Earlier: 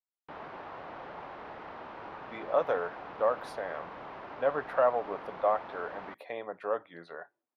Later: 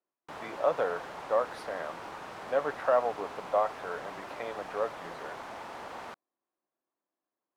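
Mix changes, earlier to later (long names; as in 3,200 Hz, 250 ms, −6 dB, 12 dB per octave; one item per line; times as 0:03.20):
speech: entry −1.90 s
background: remove high-frequency loss of the air 300 metres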